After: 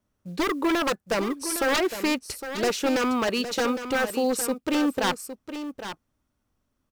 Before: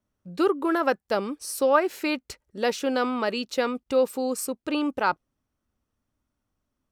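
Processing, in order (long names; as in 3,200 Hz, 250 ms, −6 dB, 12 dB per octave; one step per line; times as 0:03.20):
floating-point word with a short mantissa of 4 bits
wave folding −21.5 dBFS
single-tap delay 810 ms −10.5 dB
level +3.5 dB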